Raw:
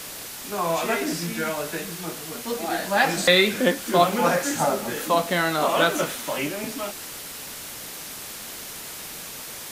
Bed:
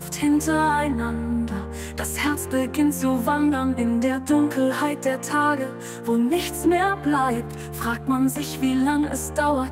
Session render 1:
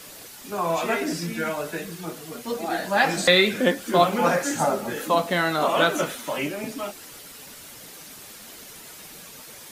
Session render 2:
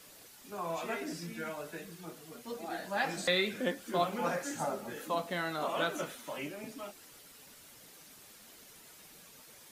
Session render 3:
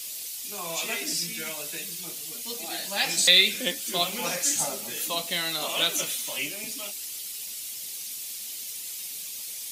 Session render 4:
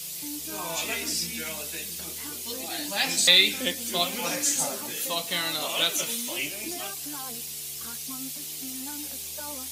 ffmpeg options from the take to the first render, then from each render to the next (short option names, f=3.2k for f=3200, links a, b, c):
-af "afftdn=nr=8:nf=-37"
-af "volume=-12.5dB"
-af "aexciter=amount=6:drive=6.3:freq=2.2k"
-filter_complex "[1:a]volume=-21dB[a];[0:a][a]amix=inputs=2:normalize=0"